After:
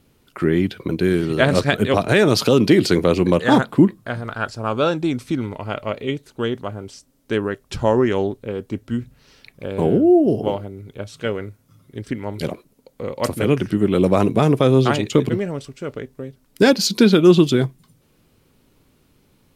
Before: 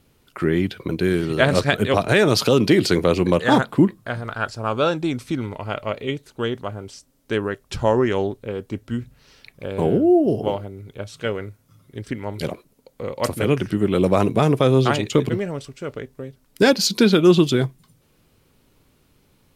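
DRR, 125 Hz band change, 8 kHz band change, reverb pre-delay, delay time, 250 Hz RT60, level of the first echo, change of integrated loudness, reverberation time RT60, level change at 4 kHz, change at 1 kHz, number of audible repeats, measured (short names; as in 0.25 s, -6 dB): none, +1.5 dB, 0.0 dB, none, none, none, none, +1.5 dB, none, 0.0 dB, +0.5 dB, none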